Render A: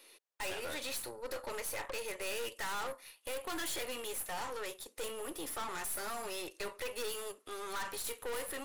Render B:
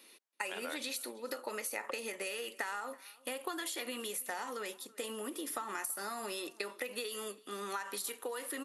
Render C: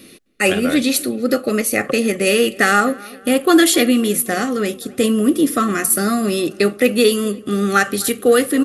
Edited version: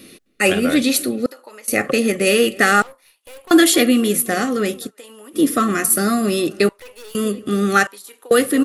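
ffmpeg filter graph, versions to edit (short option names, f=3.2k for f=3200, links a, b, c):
-filter_complex "[1:a]asplit=3[a][b][c];[0:a]asplit=2[d][e];[2:a]asplit=6[f][g][h][i][j][k];[f]atrim=end=1.262[l];[a]atrim=start=1.258:end=1.682[m];[g]atrim=start=1.678:end=2.822[n];[d]atrim=start=2.818:end=3.512[o];[h]atrim=start=3.508:end=4.91[p];[b]atrim=start=4.85:end=5.39[q];[i]atrim=start=5.33:end=6.692[r];[e]atrim=start=6.688:end=7.152[s];[j]atrim=start=7.148:end=7.872[t];[c]atrim=start=7.868:end=8.312[u];[k]atrim=start=8.308[v];[l][m]acrossfade=d=0.004:c1=hsin:c2=hsin[w];[w][n]acrossfade=d=0.004:c1=hsin:c2=hsin[x];[x][o]acrossfade=d=0.004:c1=hsin:c2=hsin[y];[y][p]acrossfade=d=0.004:c1=hsin:c2=hsin[z];[z][q]acrossfade=d=0.06:c1=tri:c2=tri[aa];[aa][r]acrossfade=d=0.06:c1=tri:c2=tri[ab];[ab][s]acrossfade=d=0.004:c1=hsin:c2=hsin[ac];[ac][t]acrossfade=d=0.004:c1=hsin:c2=hsin[ad];[ad][u]acrossfade=d=0.004:c1=hsin:c2=hsin[ae];[ae][v]acrossfade=d=0.004:c1=hsin:c2=hsin"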